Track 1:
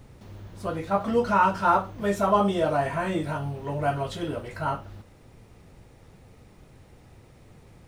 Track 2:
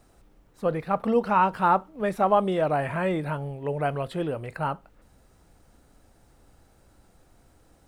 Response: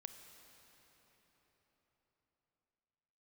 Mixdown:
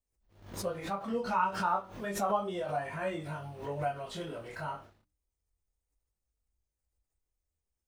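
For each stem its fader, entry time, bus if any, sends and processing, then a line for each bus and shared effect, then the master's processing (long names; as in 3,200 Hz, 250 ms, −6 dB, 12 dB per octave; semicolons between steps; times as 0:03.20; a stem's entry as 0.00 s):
−2.0 dB, 0.00 s, no send, noise gate −39 dBFS, range −37 dB; mains-hum notches 60/120/180/240/300 Hz; downward compressor 4 to 1, threshold −30 dBFS, peak gain reduction 12 dB
−3.0 dB, 0.00 s, polarity flipped, no send, spectral dynamics exaggerated over time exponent 2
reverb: not used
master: low-shelf EQ 210 Hz −11 dB; chorus effect 0.31 Hz, delay 19.5 ms, depth 7.9 ms; background raised ahead of every attack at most 100 dB per second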